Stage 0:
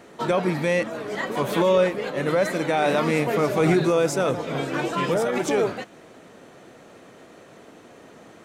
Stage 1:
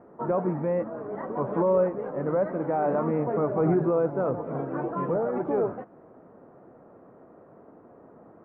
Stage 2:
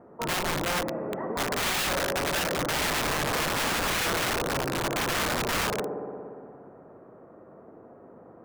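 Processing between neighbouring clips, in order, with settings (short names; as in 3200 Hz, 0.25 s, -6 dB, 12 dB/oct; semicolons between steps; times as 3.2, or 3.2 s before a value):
LPF 1200 Hz 24 dB/oct; gain -3.5 dB
spring tank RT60 2.5 s, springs 58 ms, chirp 35 ms, DRR 3.5 dB; wrapped overs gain 22.5 dB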